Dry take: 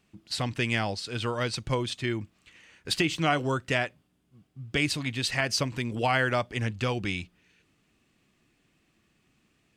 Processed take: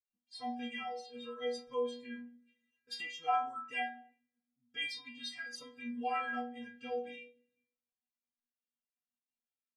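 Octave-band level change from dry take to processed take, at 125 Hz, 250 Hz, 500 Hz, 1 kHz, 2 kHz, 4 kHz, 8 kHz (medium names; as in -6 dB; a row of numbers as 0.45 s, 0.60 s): under -35 dB, -13.0 dB, -9.5 dB, -5.0 dB, -12.5 dB, -12.5 dB, -18.5 dB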